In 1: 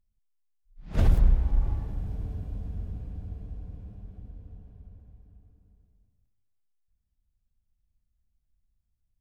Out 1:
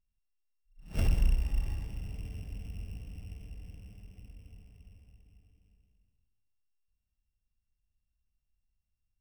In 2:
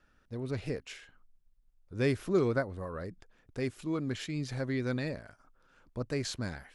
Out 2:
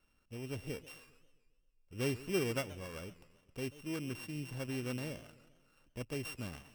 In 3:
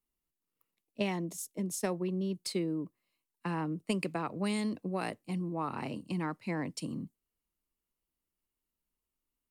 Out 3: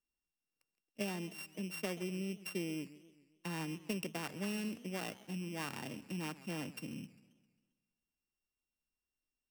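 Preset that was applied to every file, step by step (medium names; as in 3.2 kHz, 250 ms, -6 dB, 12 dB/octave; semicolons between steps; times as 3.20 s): sorted samples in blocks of 16 samples; modulated delay 133 ms, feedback 53%, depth 210 cents, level -18 dB; trim -6.5 dB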